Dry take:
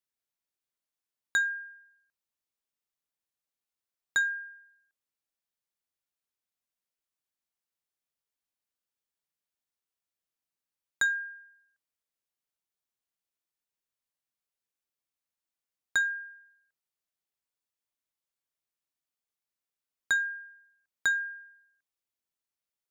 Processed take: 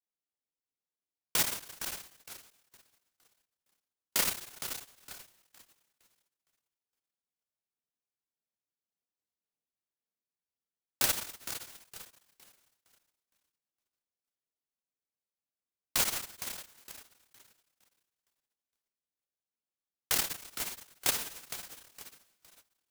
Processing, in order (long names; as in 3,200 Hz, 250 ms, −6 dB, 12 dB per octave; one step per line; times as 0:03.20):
treble cut that deepens with the level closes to 1,300 Hz, closed at −32 dBFS
dynamic equaliser 1,500 Hz, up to +6 dB, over −46 dBFS, Q 4.5
single-sideband voice off tune −95 Hz 210–2,800 Hz
tape wow and flutter 65 cents
feedback echo with a high-pass in the loop 462 ms, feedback 32%, high-pass 330 Hz, level −10 dB
multi-voice chorus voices 6, 0.9 Hz, delay 28 ms, depth 2.4 ms
short delay modulated by noise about 5,600 Hz, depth 0.24 ms
level +1.5 dB